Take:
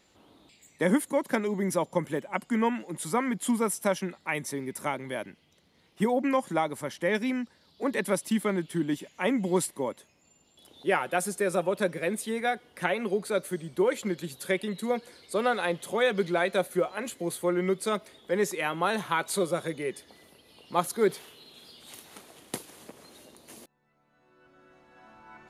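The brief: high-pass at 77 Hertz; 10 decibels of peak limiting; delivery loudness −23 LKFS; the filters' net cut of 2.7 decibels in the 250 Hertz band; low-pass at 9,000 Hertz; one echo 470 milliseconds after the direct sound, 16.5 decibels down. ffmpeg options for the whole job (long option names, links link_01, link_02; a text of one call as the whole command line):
ffmpeg -i in.wav -af "highpass=77,lowpass=9000,equalizer=frequency=250:width_type=o:gain=-3.5,alimiter=limit=-20dB:level=0:latency=1,aecho=1:1:470:0.15,volume=9.5dB" out.wav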